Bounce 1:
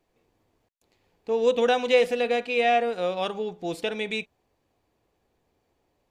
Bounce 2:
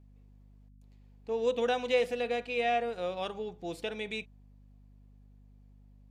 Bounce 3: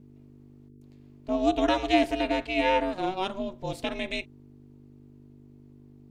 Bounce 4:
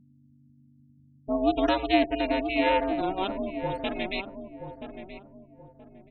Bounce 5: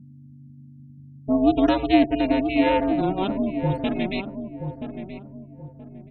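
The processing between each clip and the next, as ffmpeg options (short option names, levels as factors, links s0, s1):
-af "aeval=exprs='val(0)+0.00398*(sin(2*PI*50*n/s)+sin(2*PI*2*50*n/s)/2+sin(2*PI*3*50*n/s)/3+sin(2*PI*4*50*n/s)/4+sin(2*PI*5*50*n/s)/5)':c=same,volume=0.422"
-af "aeval=exprs='val(0)*sin(2*PI*190*n/s)':c=same,volume=2.51"
-filter_complex "[0:a]afftfilt=real='re*gte(hypot(re,im),0.0178)':imag='im*gte(hypot(re,im),0.0178)':win_size=1024:overlap=0.75,asplit=2[s0][s1];[s1]adelay=977,lowpass=f=970:p=1,volume=0.422,asplit=2[s2][s3];[s3]adelay=977,lowpass=f=970:p=1,volume=0.33,asplit=2[s4][s5];[s5]adelay=977,lowpass=f=970:p=1,volume=0.33,asplit=2[s6][s7];[s7]adelay=977,lowpass=f=970:p=1,volume=0.33[s8];[s0][s2][s4][s6][s8]amix=inputs=5:normalize=0"
-af "equalizer=f=150:t=o:w=2.1:g=14.5"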